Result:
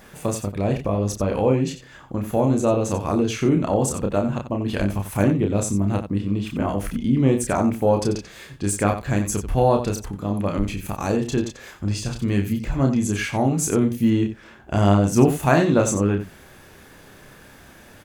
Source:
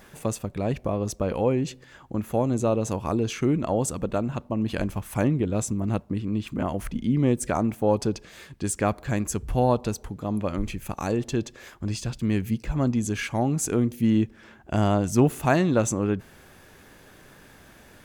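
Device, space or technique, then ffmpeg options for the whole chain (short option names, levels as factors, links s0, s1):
slapback doubling: -filter_complex "[0:a]asplit=3[s0][s1][s2];[s1]adelay=30,volume=0.631[s3];[s2]adelay=90,volume=0.299[s4];[s0][s3][s4]amix=inputs=3:normalize=0,volume=1.33"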